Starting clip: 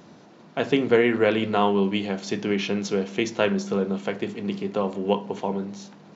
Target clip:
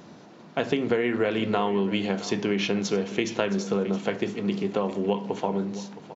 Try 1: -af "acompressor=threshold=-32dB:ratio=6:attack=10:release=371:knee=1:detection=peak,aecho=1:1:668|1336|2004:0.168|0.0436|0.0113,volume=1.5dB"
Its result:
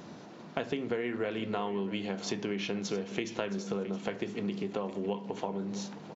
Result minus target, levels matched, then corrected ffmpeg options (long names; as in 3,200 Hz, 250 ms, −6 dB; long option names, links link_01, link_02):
downward compressor: peak gain reduction +9 dB
-af "acompressor=threshold=-21.5dB:ratio=6:attack=10:release=371:knee=1:detection=peak,aecho=1:1:668|1336|2004:0.168|0.0436|0.0113,volume=1.5dB"